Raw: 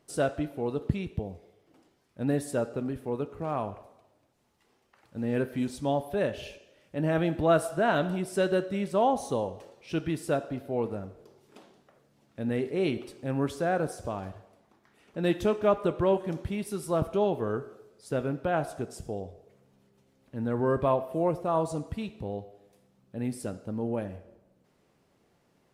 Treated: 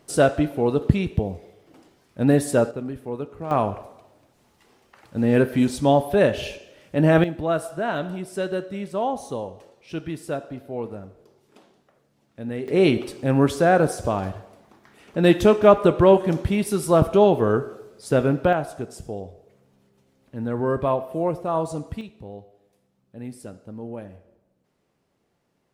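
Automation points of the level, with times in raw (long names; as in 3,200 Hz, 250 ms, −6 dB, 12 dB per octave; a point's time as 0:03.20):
+10 dB
from 0:02.71 +1.5 dB
from 0:03.51 +10.5 dB
from 0:07.24 −0.5 dB
from 0:12.68 +10.5 dB
from 0:18.53 +3 dB
from 0:22.01 −3.5 dB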